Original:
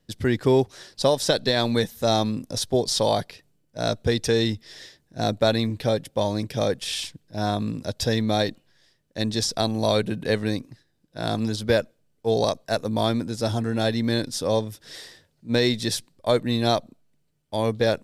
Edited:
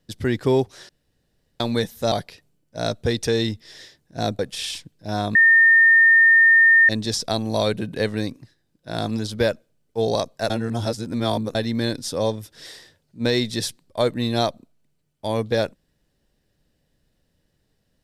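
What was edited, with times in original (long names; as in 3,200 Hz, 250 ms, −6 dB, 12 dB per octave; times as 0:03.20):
0:00.89–0:01.60: fill with room tone
0:02.12–0:03.13: remove
0:05.40–0:06.68: remove
0:07.64–0:09.18: beep over 1,820 Hz −10 dBFS
0:12.79–0:13.84: reverse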